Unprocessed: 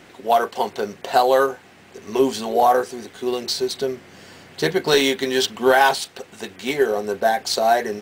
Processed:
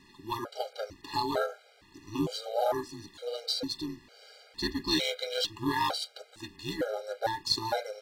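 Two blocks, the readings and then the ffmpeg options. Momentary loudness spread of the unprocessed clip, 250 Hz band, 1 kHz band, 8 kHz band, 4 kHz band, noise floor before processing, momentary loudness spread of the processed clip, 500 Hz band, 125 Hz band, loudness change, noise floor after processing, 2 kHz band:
13 LU, −9.0 dB, −14.5 dB, −12.5 dB, −7.0 dB, −48 dBFS, 12 LU, −15.0 dB, −5.0 dB, −12.5 dB, −60 dBFS, −15.0 dB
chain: -filter_complex "[0:a]equalizer=frequency=4300:width=2.7:gain=10,asplit=2[link_01][link_02];[link_02]aeval=exprs='clip(val(0),-1,0.0708)':channel_layout=same,volume=-10dB[link_03];[link_01][link_03]amix=inputs=2:normalize=0,bandreject=frequency=6300:width=21,aeval=exprs='val(0)*sin(2*PI*110*n/s)':channel_layout=same,afftfilt=real='re*gt(sin(2*PI*1.1*pts/sr)*(1-2*mod(floor(b*sr/1024/410),2)),0)':imag='im*gt(sin(2*PI*1.1*pts/sr)*(1-2*mod(floor(b*sr/1024/410),2)),0)':win_size=1024:overlap=0.75,volume=-9dB"

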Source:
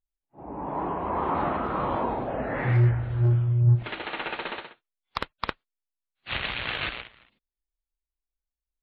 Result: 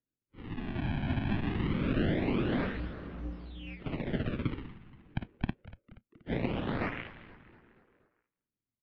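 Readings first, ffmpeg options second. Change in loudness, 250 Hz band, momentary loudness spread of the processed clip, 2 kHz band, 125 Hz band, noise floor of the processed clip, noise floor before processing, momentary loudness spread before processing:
−7.5 dB, +1.5 dB, 17 LU, −7.0 dB, −11.0 dB, below −85 dBFS, below −85 dBFS, 16 LU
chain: -filter_complex "[0:a]asplit=2[link_01][link_02];[link_02]asoftclip=type=tanh:threshold=-24dB,volume=-3dB[link_03];[link_01][link_03]amix=inputs=2:normalize=0,acompressor=threshold=-21dB:ratio=2.5,acrusher=samples=32:mix=1:aa=0.000001:lfo=1:lforange=51.2:lforate=0.24,highpass=frequency=290:width_type=q:width=0.5412,highpass=frequency=290:width_type=q:width=1.307,lowpass=frequency=3500:width_type=q:width=0.5176,lowpass=frequency=3500:width_type=q:width=0.7071,lowpass=frequency=3500:width_type=q:width=1.932,afreqshift=-300,equalizer=frequency=125:width_type=o:width=1:gain=5,equalizer=frequency=250:width_type=o:width=1:gain=5,equalizer=frequency=1000:width_type=o:width=1:gain=-6,asplit=6[link_04][link_05][link_06][link_07][link_08][link_09];[link_05]adelay=238,afreqshift=-120,volume=-16dB[link_10];[link_06]adelay=476,afreqshift=-240,volume=-21.4dB[link_11];[link_07]adelay=714,afreqshift=-360,volume=-26.7dB[link_12];[link_08]adelay=952,afreqshift=-480,volume=-32.1dB[link_13];[link_09]adelay=1190,afreqshift=-600,volume=-37.4dB[link_14];[link_04][link_10][link_11][link_12][link_13][link_14]amix=inputs=6:normalize=0,volume=-4.5dB"

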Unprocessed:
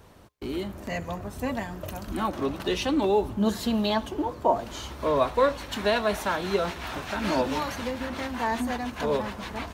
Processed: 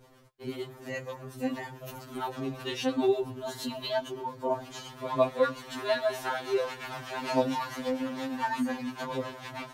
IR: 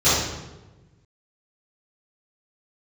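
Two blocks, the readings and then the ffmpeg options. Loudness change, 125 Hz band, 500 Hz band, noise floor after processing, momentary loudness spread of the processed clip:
−4.5 dB, −7.0 dB, −3.5 dB, −49 dBFS, 11 LU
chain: -filter_complex "[0:a]acrossover=split=480[link_01][link_02];[link_01]aeval=exprs='val(0)*(1-0.5/2+0.5/2*cos(2*PI*8.7*n/s))':channel_layout=same[link_03];[link_02]aeval=exprs='val(0)*(1-0.5/2-0.5/2*cos(2*PI*8.7*n/s))':channel_layout=same[link_04];[link_03][link_04]amix=inputs=2:normalize=0,afftfilt=real='re*2.45*eq(mod(b,6),0)':imag='im*2.45*eq(mod(b,6),0)':win_size=2048:overlap=0.75"

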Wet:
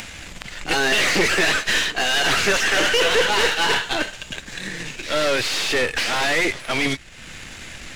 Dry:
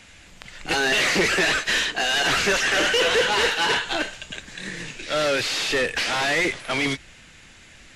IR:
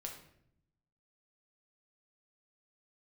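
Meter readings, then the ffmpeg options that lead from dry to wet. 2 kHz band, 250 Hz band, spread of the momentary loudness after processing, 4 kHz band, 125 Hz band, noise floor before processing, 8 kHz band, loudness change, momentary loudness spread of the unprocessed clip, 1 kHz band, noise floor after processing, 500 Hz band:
+2.0 dB, +2.0 dB, 18 LU, +2.0 dB, +2.0 dB, −48 dBFS, +2.5 dB, +1.5 dB, 14 LU, +2.0 dB, −40 dBFS, +1.5 dB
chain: -af "aeval=exprs='if(lt(val(0),0),0.447*val(0),val(0))':channel_layout=same,acompressor=mode=upward:threshold=-30dB:ratio=2.5,volume=4.5dB"

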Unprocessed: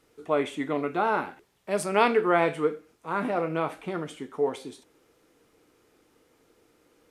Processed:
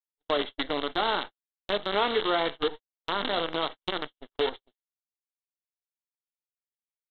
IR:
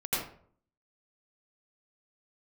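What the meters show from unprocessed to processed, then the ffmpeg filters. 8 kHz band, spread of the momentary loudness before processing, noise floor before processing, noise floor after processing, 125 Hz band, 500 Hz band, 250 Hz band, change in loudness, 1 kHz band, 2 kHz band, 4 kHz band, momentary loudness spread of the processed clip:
below −25 dB, 16 LU, −66 dBFS, below −85 dBFS, −8.5 dB, −3.5 dB, −5.5 dB, −2.0 dB, −2.5 dB, −1.5 dB, +12.0 dB, 9 LU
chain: -af "aresample=8000,acrusher=bits=5:dc=4:mix=0:aa=0.000001,aresample=44100,acompressor=threshold=-37dB:ratio=2,aexciter=amount=2.6:drive=4.1:freq=3000,acontrast=41,equalizer=frequency=120:width_type=o:width=1.4:gain=-11.5,bandreject=frequency=2500:width=6,agate=range=-56dB:threshold=-34dB:ratio=16:detection=peak,volume=1.5dB"

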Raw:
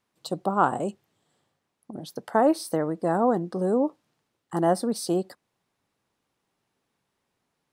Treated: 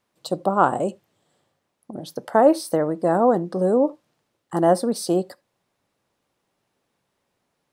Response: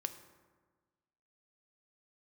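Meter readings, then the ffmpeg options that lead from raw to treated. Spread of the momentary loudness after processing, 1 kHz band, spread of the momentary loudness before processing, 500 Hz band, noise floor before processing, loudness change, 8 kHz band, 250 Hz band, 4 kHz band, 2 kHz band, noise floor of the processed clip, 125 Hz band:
16 LU, +4.0 dB, 15 LU, +6.0 dB, −79 dBFS, +4.5 dB, +3.0 dB, +3.5 dB, +3.0 dB, +3.0 dB, −76 dBFS, +3.0 dB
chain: -filter_complex "[0:a]equalizer=frequency=570:width_type=o:width=0.51:gain=4.5,asplit=2[link_01][link_02];[1:a]atrim=start_sample=2205,atrim=end_sample=3969[link_03];[link_02][link_03]afir=irnorm=-1:irlink=0,volume=-6.5dB[link_04];[link_01][link_04]amix=inputs=2:normalize=0"

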